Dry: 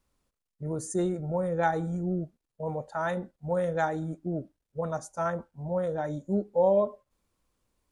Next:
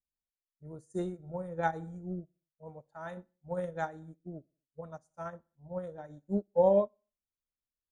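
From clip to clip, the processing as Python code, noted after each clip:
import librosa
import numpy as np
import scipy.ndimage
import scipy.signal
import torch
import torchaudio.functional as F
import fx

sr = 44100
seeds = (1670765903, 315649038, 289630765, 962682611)

y = fx.low_shelf(x, sr, hz=130.0, db=5.5)
y = fx.echo_feedback(y, sr, ms=61, feedback_pct=52, wet_db=-18)
y = fx.upward_expand(y, sr, threshold_db=-39.0, expansion=2.5)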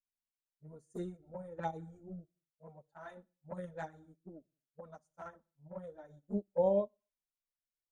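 y = fx.env_flanger(x, sr, rest_ms=9.5, full_db=-28.0)
y = y * 10.0 ** (-4.0 / 20.0)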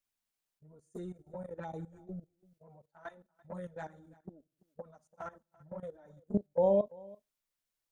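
y = fx.level_steps(x, sr, step_db=16)
y = y + 10.0 ** (-23.0 / 20.0) * np.pad(y, (int(337 * sr / 1000.0), 0))[:len(y)]
y = y * 10.0 ** (7.0 / 20.0)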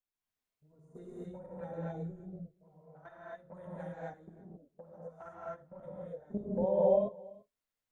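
y = fx.high_shelf(x, sr, hz=3100.0, db=-8.0)
y = fx.rev_gated(y, sr, seeds[0], gate_ms=290, shape='rising', drr_db=-7.0)
y = y * 10.0 ** (-7.0 / 20.0)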